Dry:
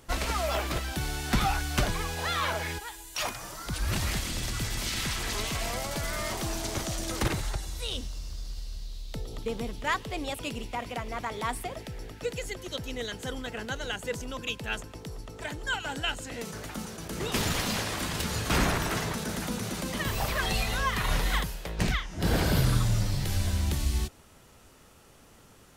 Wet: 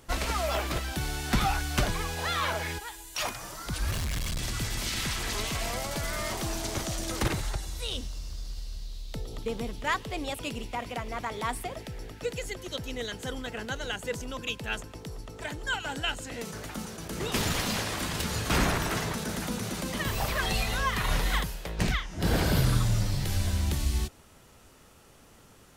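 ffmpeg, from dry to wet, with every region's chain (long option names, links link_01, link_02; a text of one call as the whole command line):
ffmpeg -i in.wav -filter_complex "[0:a]asettb=1/sr,asplit=3[link_01][link_02][link_03];[link_01]atrim=end=3.914[link_04];[link_02]atrim=start=3.91:end=4.39,asetpts=PTS-STARTPTS,afade=type=in:duration=0.004:curve=qsin,afade=type=out:start_time=0.476:duration=0.004:curve=qsin,aecho=1:1:1.8:0.85,atrim=end_sample=21168,asubboost=boost=9.5:cutoff=250,volume=29dB,asoftclip=hard,volume=-29dB[link_05];[link_03]atrim=start=4.386[link_06];[link_04][link_05]acrossfade=duration=0.004:curve1=hsin:curve2=qsin[link_07];[link_07][link_06]acrossfade=duration=0.004:curve1=qsin:curve2=hsin" out.wav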